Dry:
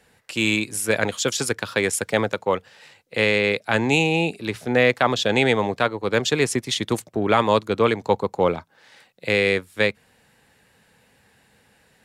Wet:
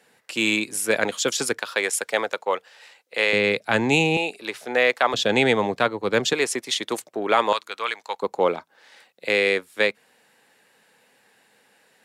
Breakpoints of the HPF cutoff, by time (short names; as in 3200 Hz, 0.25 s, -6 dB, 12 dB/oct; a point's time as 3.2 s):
220 Hz
from 1.59 s 500 Hz
from 3.33 s 120 Hz
from 4.17 s 470 Hz
from 5.14 s 140 Hz
from 6.33 s 390 Hz
from 7.53 s 1200 Hz
from 8.22 s 300 Hz